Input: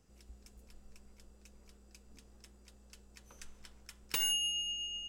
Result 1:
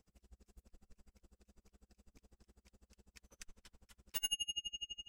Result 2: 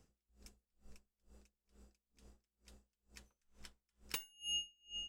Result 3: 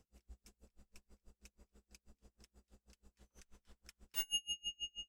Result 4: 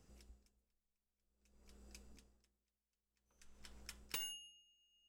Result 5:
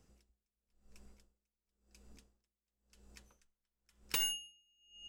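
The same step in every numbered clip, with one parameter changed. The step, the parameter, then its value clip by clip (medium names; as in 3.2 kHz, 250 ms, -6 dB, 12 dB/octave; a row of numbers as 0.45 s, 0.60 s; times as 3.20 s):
logarithmic tremolo, rate: 12 Hz, 2.2 Hz, 6.2 Hz, 0.52 Hz, 0.96 Hz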